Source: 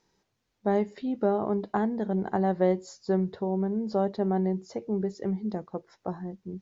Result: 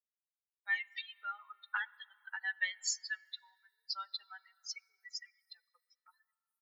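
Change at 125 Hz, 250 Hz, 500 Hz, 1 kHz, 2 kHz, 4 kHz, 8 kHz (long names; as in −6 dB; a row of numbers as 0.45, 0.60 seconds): below −40 dB, below −40 dB, below −40 dB, −15.0 dB, +8.0 dB, +10.0 dB, can't be measured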